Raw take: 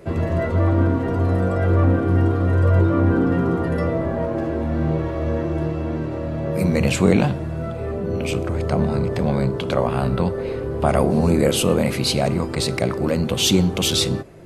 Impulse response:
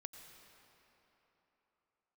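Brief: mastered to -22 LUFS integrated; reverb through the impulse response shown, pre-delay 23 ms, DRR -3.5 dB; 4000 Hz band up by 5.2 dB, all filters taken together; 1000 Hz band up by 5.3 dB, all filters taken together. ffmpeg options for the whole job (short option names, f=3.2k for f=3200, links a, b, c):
-filter_complex "[0:a]equalizer=f=1k:t=o:g=7,equalizer=f=4k:t=o:g=6,asplit=2[a][b];[1:a]atrim=start_sample=2205,adelay=23[c];[b][c]afir=irnorm=-1:irlink=0,volume=8.5dB[d];[a][d]amix=inputs=2:normalize=0,volume=-8.5dB"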